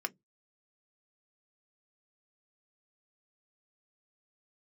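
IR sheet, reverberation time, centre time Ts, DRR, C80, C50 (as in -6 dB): 0.15 s, 3 ms, 7.5 dB, 41.5 dB, 31.0 dB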